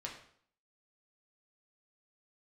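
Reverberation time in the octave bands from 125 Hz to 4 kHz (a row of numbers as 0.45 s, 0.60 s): 0.60 s, 0.65 s, 0.60 s, 0.60 s, 0.55 s, 0.50 s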